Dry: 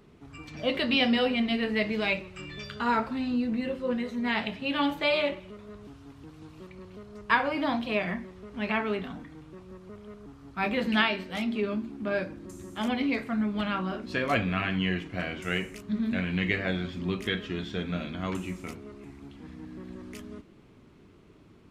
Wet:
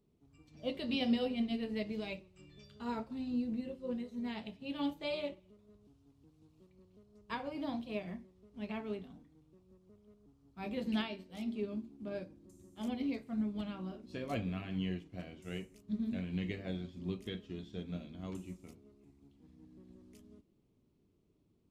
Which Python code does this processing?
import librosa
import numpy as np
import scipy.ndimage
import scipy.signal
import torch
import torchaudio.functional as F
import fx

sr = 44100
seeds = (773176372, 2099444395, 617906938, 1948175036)

y = fx.peak_eq(x, sr, hz=1600.0, db=-13.5, octaves=1.8)
y = fx.upward_expand(y, sr, threshold_db=-48.0, expansion=1.5)
y = y * librosa.db_to_amplitude(-4.0)